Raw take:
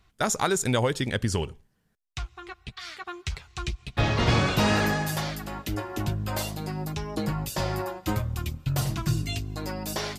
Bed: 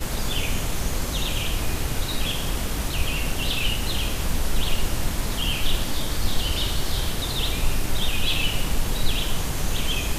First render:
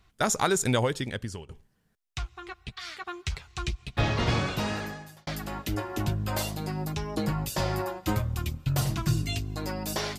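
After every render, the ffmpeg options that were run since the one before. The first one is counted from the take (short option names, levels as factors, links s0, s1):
-filter_complex "[0:a]asplit=3[s0][s1][s2];[s0]atrim=end=1.49,asetpts=PTS-STARTPTS,afade=t=out:st=0.7:d=0.79:silence=0.1[s3];[s1]atrim=start=1.49:end=5.27,asetpts=PTS-STARTPTS,afade=t=in:d=0.004:c=hsin:silence=0.1,afade=t=out:st=2.28:d=1.5[s4];[s2]atrim=start=5.27,asetpts=PTS-STARTPTS,afade=t=in:d=0.004:c=hsin[s5];[s3][s4][s5]concat=n=3:v=0:a=1"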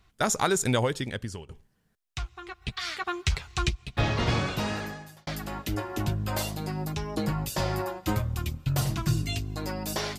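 -filter_complex "[0:a]asplit=3[s0][s1][s2];[s0]afade=t=out:st=2.61:d=0.02[s3];[s1]acontrast=52,afade=t=in:st=2.61:d=0.02,afade=t=out:st=3.68:d=0.02[s4];[s2]afade=t=in:st=3.68:d=0.02[s5];[s3][s4][s5]amix=inputs=3:normalize=0"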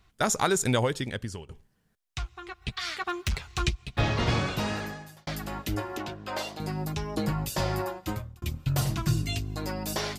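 -filter_complex "[0:a]asettb=1/sr,asplit=3[s0][s1][s2];[s0]atrim=end=2.964[s3];[s1]atrim=start=2.96:end=3.61,asetpts=PTS-STARTPTS,afade=t=in:d=0.004:c=qsin,afade=t=out:st=0.646:d=0.004:c=qsin,volume=14.1,asoftclip=hard,volume=0.0708[s4];[s2]atrim=start=3.606[s5];[s3][s4]acrossfade=d=0.004:c1=hsin:c2=qsin[s6];[s6][s5]acrossfade=d=0.004:c1=qsin:c2=hsin,asettb=1/sr,asplit=3[s7][s8][s9];[s7]atrim=end=5.974[s10];[s8]atrim=start=5.97:end=6.6,asetpts=PTS-STARTPTS,afade=t=in:d=0.004:c=qsin,afade=t=out:st=0.626:d=0.004:c=qsin,acrossover=split=270 5900:gain=0.126 1 0.178[s11][s12][s13];[s11][s12][s13]amix=inputs=3:normalize=0[s14];[s9]atrim=start=6.596[s15];[s10][s14]acrossfade=d=0.004:c1=hsin:c2=qsin[s16];[s16][s15]acrossfade=d=0.004:c1=qsin:c2=hsin,asplit=2[s17][s18];[s17]atrim=end=8.42,asetpts=PTS-STARTPTS,afade=t=out:st=7.87:d=0.55[s19];[s18]atrim=start=8.42,asetpts=PTS-STARTPTS,afade=t=in:d=0.004:c=hsin[s20];[s19][s20]concat=n=2:v=0:a=1"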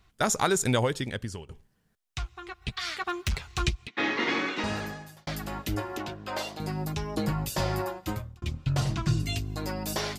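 -filter_complex "[0:a]asettb=1/sr,asplit=3[s0][s1][s2];[s0]atrim=end=3.874[s3];[s1]atrim=start=3.87:end=4.64,asetpts=PTS-STARTPTS,afade=t=in:d=0.004:c=qsin,afade=t=out:st=0.766:d=0.004:c=qsin,highpass=f=250:w=0.5412,highpass=f=250:w=1.3066,equalizer=f=300:t=q:w=4:g=7,equalizer=f=640:t=q:w=4:g=-9,equalizer=f=2000:t=q:w=4:g=10,equalizer=f=4900:t=q:w=4:g=-5,lowpass=f=6100:w=0.5412,lowpass=f=6100:w=1.3066[s4];[s2]atrim=start=4.636[s5];[s3][s4]acrossfade=d=0.004:c1=hsin:c2=qsin[s6];[s6][s5]acrossfade=d=0.004:c1=qsin:c2=hsin,asettb=1/sr,asplit=3[s7][s8][s9];[s7]atrim=end=8.364[s10];[s8]atrim=start=8.36:end=9.2,asetpts=PTS-STARTPTS,afade=t=in:d=0.004:c=qsin,afade=t=out:st=0.836:d=0.004:c=qsin,lowpass=6400[s11];[s9]atrim=start=9.196[s12];[s10][s11]acrossfade=d=0.004:c1=hsin:c2=qsin[s13];[s13][s12]acrossfade=d=0.004:c1=qsin:c2=hsin"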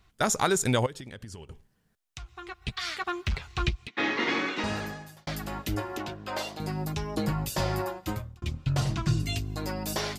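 -filter_complex "[0:a]asettb=1/sr,asplit=3[s0][s1][s2];[s0]atrim=end=0.864[s3];[s1]atrim=start=0.86:end=2.31,asetpts=PTS-STARTPTS,afade=t=in:d=0.004:c=qsin,afade=t=out:st=1.446:d=0.004:c=qsin,acompressor=threshold=0.0141:ratio=8:attack=3.2:release=140:knee=1:detection=peak[s4];[s2]atrim=start=2.306[s5];[s3][s4]acrossfade=d=0.004:c1=hsin:c2=qsin[s6];[s6][s5]acrossfade=d=0.004:c1=qsin:c2=hsin,asettb=1/sr,asplit=3[s7][s8][s9];[s7]atrim=end=3.064[s10];[s8]atrim=start=3.06:end=3.81,asetpts=PTS-STARTPTS,afade=t=in:d=0.004:c=qsin,afade=t=out:st=0.746:d=0.004:c=qsin,acrossover=split=4700[s11][s12];[s12]acompressor=threshold=0.00251:ratio=4:attack=1:release=60[s13];[s11][s13]amix=inputs=2:normalize=0[s14];[s9]atrim=start=3.806[s15];[s10][s14]acrossfade=d=0.004:c1=hsin:c2=qsin[s16];[s16][s15]acrossfade=d=0.004:c1=qsin:c2=hsin"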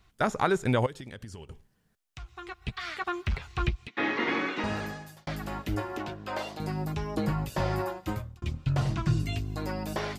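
-filter_complex "[0:a]acrossover=split=2800[s0][s1];[s1]acompressor=threshold=0.00501:ratio=4:attack=1:release=60[s2];[s0][s2]amix=inputs=2:normalize=0"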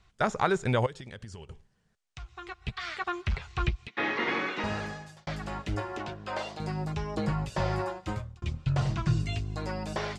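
-af "lowpass=f=8600:w=0.5412,lowpass=f=8600:w=1.3066,equalizer=f=280:w=3.4:g=-7"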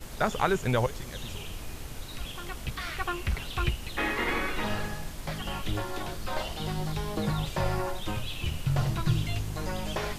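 -filter_complex "[1:a]volume=0.2[s0];[0:a][s0]amix=inputs=2:normalize=0"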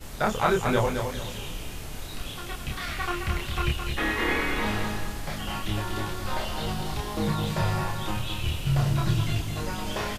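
-filter_complex "[0:a]asplit=2[s0][s1];[s1]adelay=28,volume=0.794[s2];[s0][s2]amix=inputs=2:normalize=0,aecho=1:1:215|430|645|860:0.501|0.165|0.0546|0.018"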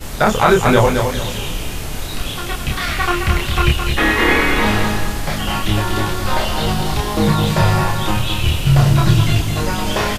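-af "volume=3.98,alimiter=limit=0.891:level=0:latency=1"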